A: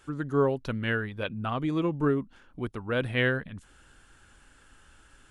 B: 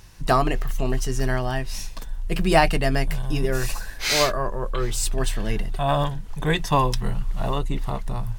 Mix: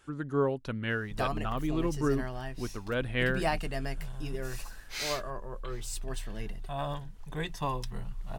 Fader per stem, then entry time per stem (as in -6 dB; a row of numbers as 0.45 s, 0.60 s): -3.5 dB, -13.0 dB; 0.00 s, 0.90 s